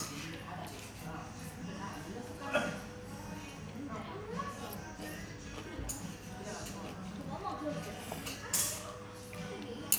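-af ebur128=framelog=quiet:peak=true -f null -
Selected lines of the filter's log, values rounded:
Integrated loudness:
  I:         -40.9 LUFS
  Threshold: -50.9 LUFS
Loudness range:
  LRA:         4.4 LU
  Threshold: -61.3 LUFS
  LRA low:   -43.3 LUFS
  LRA high:  -38.9 LUFS
True peak:
  Peak:       -8.5 dBFS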